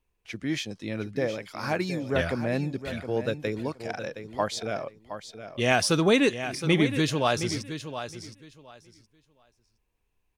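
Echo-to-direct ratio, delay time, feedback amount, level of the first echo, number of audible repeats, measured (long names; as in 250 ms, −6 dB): −10.5 dB, 717 ms, 19%, −10.5 dB, 2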